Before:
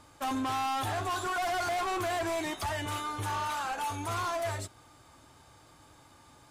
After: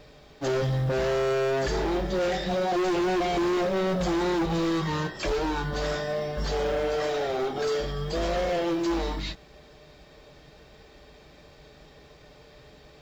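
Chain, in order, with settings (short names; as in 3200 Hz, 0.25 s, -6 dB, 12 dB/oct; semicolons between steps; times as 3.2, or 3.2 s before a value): speed mistake 15 ips tape played at 7.5 ips; companded quantiser 8-bit; gain +6 dB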